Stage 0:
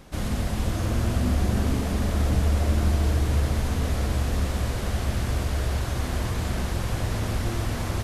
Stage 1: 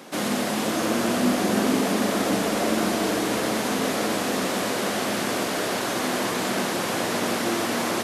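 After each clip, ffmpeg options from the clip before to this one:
-af "highpass=f=220:w=0.5412,highpass=f=220:w=1.3066,volume=8.5dB"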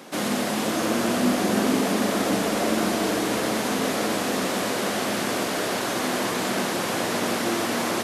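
-af anull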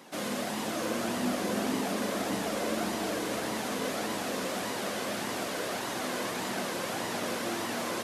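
-af "flanger=delay=1:depth=1:regen=64:speed=1.7:shape=sinusoidal,volume=-3.5dB"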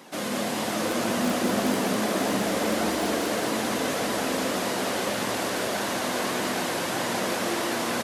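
-filter_complex "[0:a]asplit=2[a][b];[b]aeval=exprs='(mod(10*val(0)+1,2)-1)/10':c=same,volume=-5dB[c];[a][c]amix=inputs=2:normalize=0,aecho=1:1:200|420|662|928.2|1221:0.631|0.398|0.251|0.158|0.1"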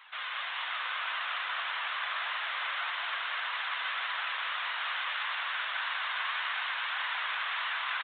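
-af "asuperpass=centerf=2700:order=8:qfactor=0.51,aresample=8000,aresample=44100"

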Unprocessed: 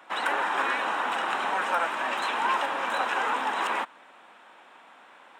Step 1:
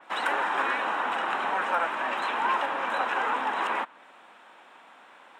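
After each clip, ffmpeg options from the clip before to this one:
-af "adynamicequalizer=threshold=0.00562:dfrequency=3500:dqfactor=0.7:tfrequency=3500:tqfactor=0.7:attack=5:release=100:ratio=0.375:range=4:mode=cutabove:tftype=highshelf"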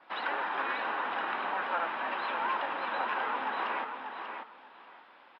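-filter_complex "[0:a]acrusher=bits=10:mix=0:aa=0.000001,asplit=2[a][b];[b]aecho=0:1:589|1178|1767:0.473|0.0899|0.0171[c];[a][c]amix=inputs=2:normalize=0,aresample=11025,aresample=44100,volume=-6dB"

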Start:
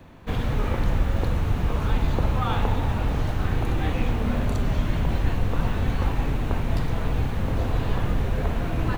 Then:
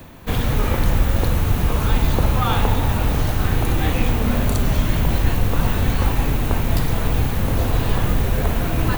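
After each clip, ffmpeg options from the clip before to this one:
-af "aemphasis=mode=production:type=50fm,areverse,acompressor=mode=upward:threshold=-34dB:ratio=2.5,areverse,volume=5.5dB"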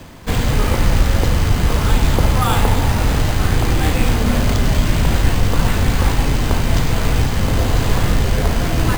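-af "acrusher=samples=4:mix=1:aa=0.000001,volume=3dB"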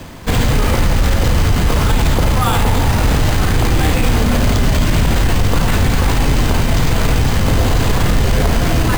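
-af "alimiter=limit=-10.5dB:level=0:latency=1:release=19,volume=5dB"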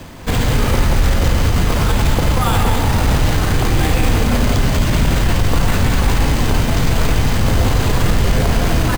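-af "aecho=1:1:186:0.473,volume=-2dB"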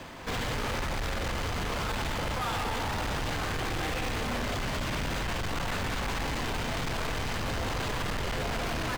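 -filter_complex "[0:a]asplit=2[a][b];[b]highpass=f=720:p=1,volume=11dB,asoftclip=type=tanh:threshold=-4dB[c];[a][c]amix=inputs=2:normalize=0,lowpass=f=3.3k:p=1,volume=-6dB,asoftclip=type=tanh:threshold=-19.5dB,volume=-9dB"

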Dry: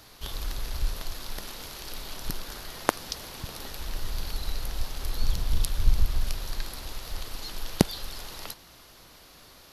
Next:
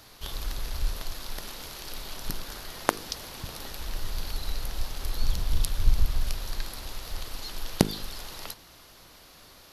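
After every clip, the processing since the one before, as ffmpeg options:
-af "bandreject=f=52.17:t=h:w=4,bandreject=f=104.34:t=h:w=4,bandreject=f=156.51:t=h:w=4,bandreject=f=208.68:t=h:w=4,bandreject=f=260.85:t=h:w=4,bandreject=f=313.02:t=h:w=4,bandreject=f=365.19:t=h:w=4,bandreject=f=417.36:t=h:w=4,bandreject=f=469.53:t=h:w=4"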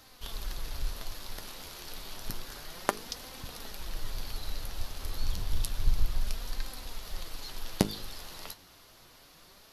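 -af "flanger=delay=3.8:depth=7.7:regen=52:speed=0.3:shape=sinusoidal"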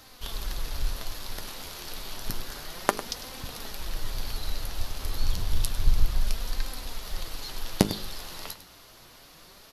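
-af "aecho=1:1:101:0.211,volume=4.5dB"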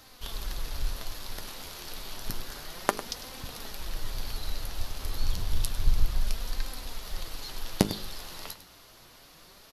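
-af "aresample=32000,aresample=44100,volume=-2dB"

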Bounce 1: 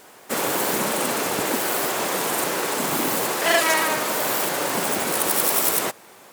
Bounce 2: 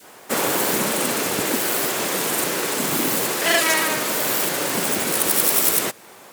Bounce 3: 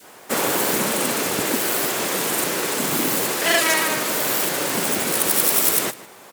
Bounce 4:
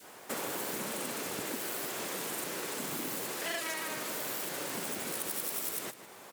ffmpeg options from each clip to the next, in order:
-af "adynamicequalizer=threshold=0.0158:dfrequency=860:dqfactor=0.9:tfrequency=860:tqfactor=0.9:attack=5:release=100:ratio=0.375:range=3:mode=cutabove:tftype=bell,volume=3dB"
-filter_complex "[0:a]asplit=2[a][b];[b]adelay=151.6,volume=-17dB,highshelf=f=4k:g=-3.41[c];[a][c]amix=inputs=2:normalize=0"
-af "acompressor=threshold=-32dB:ratio=2.5,volume=-6.5dB"

